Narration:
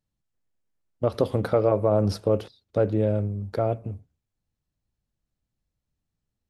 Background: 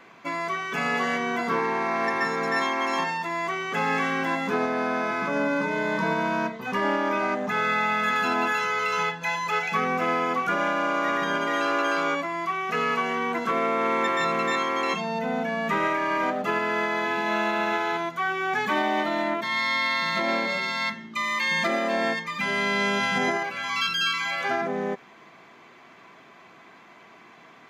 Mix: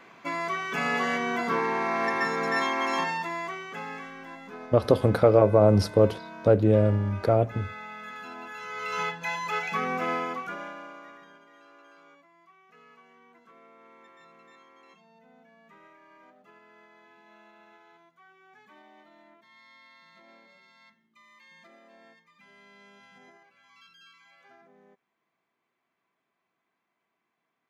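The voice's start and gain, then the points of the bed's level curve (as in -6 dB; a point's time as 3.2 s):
3.70 s, +3.0 dB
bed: 3.19 s -1.5 dB
4.13 s -17 dB
8.49 s -17 dB
9 s -4 dB
10.15 s -4 dB
11.47 s -30.5 dB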